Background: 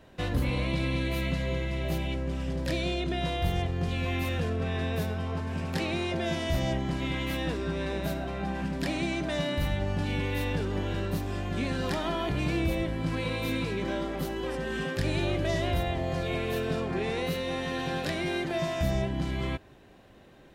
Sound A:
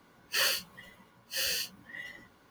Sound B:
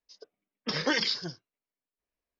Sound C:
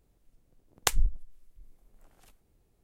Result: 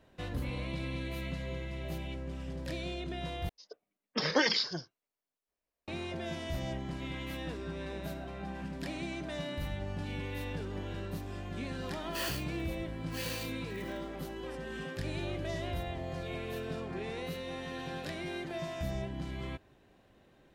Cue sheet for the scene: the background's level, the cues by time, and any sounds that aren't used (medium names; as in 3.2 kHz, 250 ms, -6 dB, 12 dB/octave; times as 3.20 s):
background -8.5 dB
3.49 s: replace with B -1.5 dB + peaking EQ 680 Hz +4 dB 1.3 oct
11.81 s: add A -9 dB + sampling jitter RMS 0.028 ms
not used: C